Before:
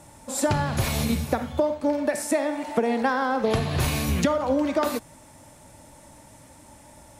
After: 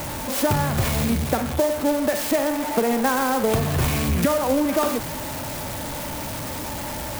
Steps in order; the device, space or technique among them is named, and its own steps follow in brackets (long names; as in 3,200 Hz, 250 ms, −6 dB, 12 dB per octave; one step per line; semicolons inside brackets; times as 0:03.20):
early CD player with a faulty converter (converter with a step at zero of −24.5 dBFS; converter with an unsteady clock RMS 0.053 ms)